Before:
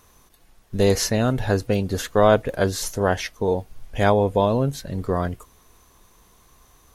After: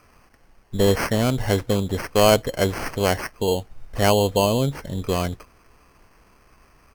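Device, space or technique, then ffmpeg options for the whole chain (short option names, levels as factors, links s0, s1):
crushed at another speed: -af "asetrate=35280,aresample=44100,acrusher=samples=15:mix=1:aa=0.000001,asetrate=55125,aresample=44100"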